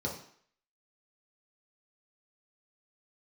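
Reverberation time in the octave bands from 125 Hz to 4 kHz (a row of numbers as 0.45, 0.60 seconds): 0.45, 0.50, 0.55, 0.60, 0.60, 0.55 seconds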